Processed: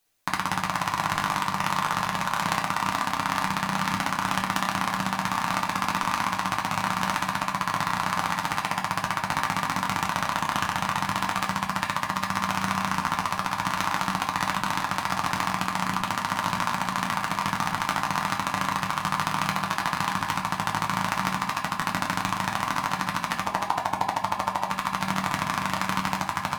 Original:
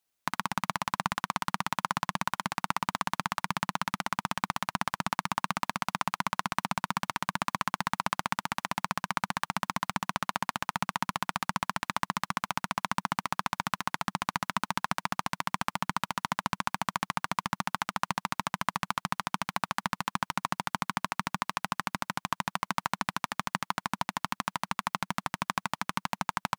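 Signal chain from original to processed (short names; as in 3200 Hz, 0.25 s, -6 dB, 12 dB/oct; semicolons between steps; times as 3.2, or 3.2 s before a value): regenerating reverse delay 0.232 s, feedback 55%, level -9 dB; 23.43–24.71 band shelf 570 Hz +9.5 dB; in parallel at +1.5 dB: negative-ratio compressor -33 dBFS, ratio -0.5; on the sum: reverb RT60 0.45 s, pre-delay 7 ms, DRR 0.5 dB; gain -2 dB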